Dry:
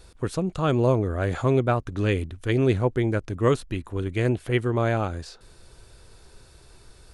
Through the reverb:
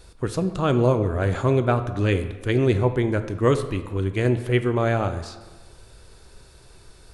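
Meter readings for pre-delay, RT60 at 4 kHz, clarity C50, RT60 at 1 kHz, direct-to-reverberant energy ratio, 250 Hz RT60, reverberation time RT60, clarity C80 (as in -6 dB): 10 ms, 0.85 s, 11.5 dB, 1.3 s, 9.5 dB, 1.3 s, 1.4 s, 13.0 dB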